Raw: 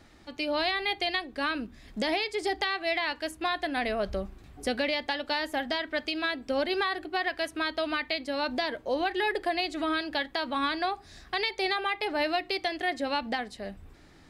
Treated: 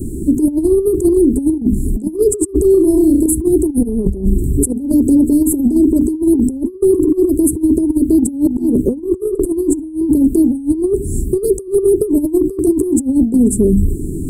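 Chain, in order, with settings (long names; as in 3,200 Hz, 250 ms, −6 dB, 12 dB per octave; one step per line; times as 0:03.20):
Chebyshev band-stop filter 400–7,900 Hz, order 5
0:08.19–0:09.14: dynamic equaliser 210 Hz, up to +5 dB, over −50 dBFS, Q 1.8
mains-hum notches 50/100/150/200/250/300 Hz
compressor whose output falls as the input rises −43 dBFS, ratio −0.5
0:02.71–0:03.26: flutter between parallel walls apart 5.4 metres, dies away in 0.43 s
boost into a limiter +34.5 dB
level −3 dB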